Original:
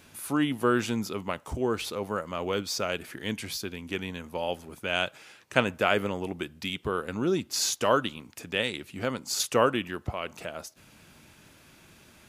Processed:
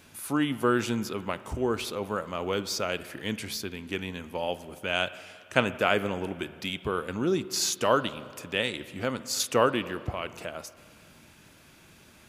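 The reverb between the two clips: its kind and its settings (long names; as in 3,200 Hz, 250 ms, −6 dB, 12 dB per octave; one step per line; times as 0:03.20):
spring reverb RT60 2.1 s, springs 42/55 ms, chirp 65 ms, DRR 14.5 dB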